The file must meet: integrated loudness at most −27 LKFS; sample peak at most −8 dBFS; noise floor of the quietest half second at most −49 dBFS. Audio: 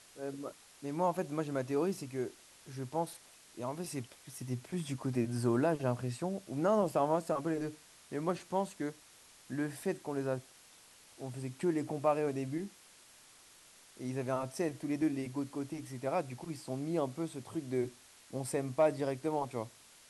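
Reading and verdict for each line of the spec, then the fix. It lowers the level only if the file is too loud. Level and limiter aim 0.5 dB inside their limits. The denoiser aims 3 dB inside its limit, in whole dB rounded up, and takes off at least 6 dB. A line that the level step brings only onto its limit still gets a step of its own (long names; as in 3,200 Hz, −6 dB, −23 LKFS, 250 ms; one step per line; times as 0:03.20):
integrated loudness −36.0 LKFS: in spec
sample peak −17.0 dBFS: in spec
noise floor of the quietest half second −60 dBFS: in spec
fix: no processing needed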